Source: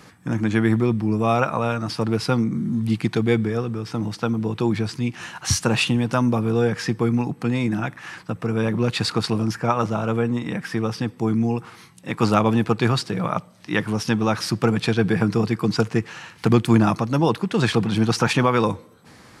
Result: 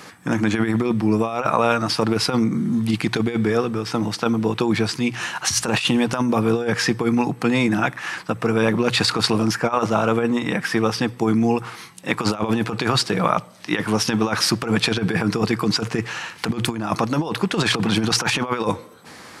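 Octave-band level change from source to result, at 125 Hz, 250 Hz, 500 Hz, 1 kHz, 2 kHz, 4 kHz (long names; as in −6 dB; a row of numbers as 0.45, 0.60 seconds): −3.0, +0.5, +1.0, +2.0, +4.0, +6.0 decibels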